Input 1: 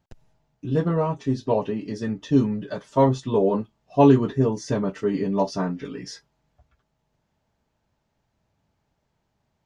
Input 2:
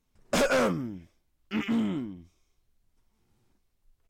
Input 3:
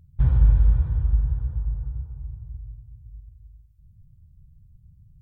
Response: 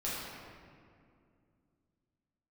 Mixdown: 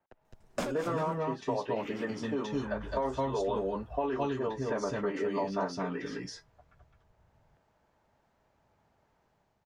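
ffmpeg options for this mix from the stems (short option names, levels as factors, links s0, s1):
-filter_complex "[0:a]dynaudnorm=f=120:g=7:m=2.24,volume=0.891,asplit=3[s0][s1][s2];[s1]volume=0.398[s3];[1:a]adelay=250,volume=0.794,asplit=2[s4][s5];[s5]volume=0.211[s6];[2:a]alimiter=limit=0.15:level=0:latency=1,adelay=2350,volume=1.26[s7];[s2]apad=whole_len=191434[s8];[s4][s8]sidechaincompress=threshold=0.0316:ratio=4:attack=10:release=287[s9];[s0][s7]amix=inputs=2:normalize=0,acrossover=split=330 2300:gain=0.112 1 0.0708[s10][s11][s12];[s10][s11][s12]amix=inputs=3:normalize=0,alimiter=limit=0.188:level=0:latency=1:release=20,volume=1[s13];[s3][s6]amix=inputs=2:normalize=0,aecho=0:1:212:1[s14];[s9][s13][s14]amix=inputs=3:normalize=0,acrossover=split=520|1400[s15][s16][s17];[s15]acompressor=threshold=0.0158:ratio=4[s18];[s16]acompressor=threshold=0.0178:ratio=4[s19];[s17]acompressor=threshold=0.00708:ratio=4[s20];[s18][s19][s20]amix=inputs=3:normalize=0"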